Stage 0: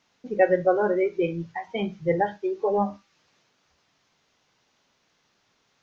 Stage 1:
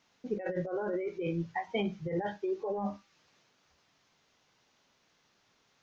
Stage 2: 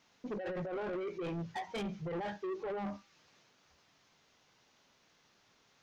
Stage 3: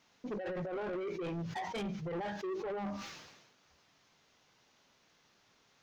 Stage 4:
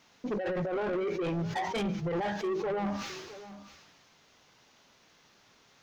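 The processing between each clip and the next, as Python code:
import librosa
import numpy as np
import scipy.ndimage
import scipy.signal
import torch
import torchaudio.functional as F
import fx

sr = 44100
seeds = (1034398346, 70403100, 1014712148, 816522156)

y1 = fx.over_compress(x, sr, threshold_db=-27.0, ratio=-1.0)
y1 = y1 * 10.0 ** (-6.0 / 20.0)
y2 = 10.0 ** (-36.5 / 20.0) * np.tanh(y1 / 10.0 ** (-36.5 / 20.0))
y2 = y2 * 10.0 ** (1.5 / 20.0)
y3 = fx.sustainer(y2, sr, db_per_s=48.0)
y4 = y3 + 10.0 ** (-15.5 / 20.0) * np.pad(y3, (int(662 * sr / 1000.0), 0))[:len(y3)]
y4 = y4 * 10.0 ** (6.5 / 20.0)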